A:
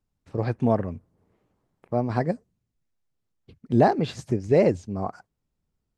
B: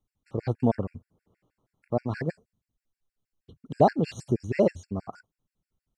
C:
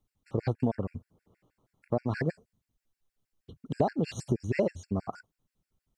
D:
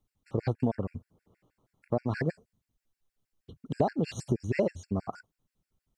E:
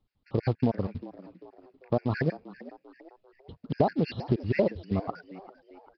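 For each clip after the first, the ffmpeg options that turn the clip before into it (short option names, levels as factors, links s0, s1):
-af "afftfilt=real='re*gt(sin(2*PI*6.3*pts/sr)*(1-2*mod(floor(b*sr/1024/1400),2)),0)':imag='im*gt(sin(2*PI*6.3*pts/sr)*(1-2*mod(floor(b*sr/1024/1400),2)),0)':win_size=1024:overlap=0.75"
-af "acompressor=threshold=0.0501:ratio=6,volume=1.33"
-af anull
-filter_complex "[0:a]acrusher=bits=6:mode=log:mix=0:aa=0.000001,asplit=5[s0][s1][s2][s3][s4];[s1]adelay=394,afreqshift=87,volume=0.133[s5];[s2]adelay=788,afreqshift=174,volume=0.0589[s6];[s3]adelay=1182,afreqshift=261,volume=0.0257[s7];[s4]adelay=1576,afreqshift=348,volume=0.0114[s8];[s0][s5][s6][s7][s8]amix=inputs=5:normalize=0,aresample=11025,aresample=44100,volume=1.33"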